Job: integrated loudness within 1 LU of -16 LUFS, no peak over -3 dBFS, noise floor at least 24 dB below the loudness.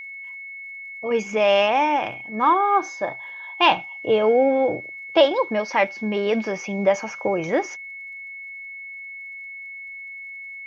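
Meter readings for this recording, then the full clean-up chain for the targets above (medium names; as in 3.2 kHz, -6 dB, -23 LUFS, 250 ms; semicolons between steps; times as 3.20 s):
tick rate 46 per s; steady tone 2.2 kHz; tone level -34 dBFS; loudness -21.5 LUFS; peak level -4.0 dBFS; loudness target -16.0 LUFS
-> de-click; band-stop 2.2 kHz, Q 30; trim +5.5 dB; peak limiter -3 dBFS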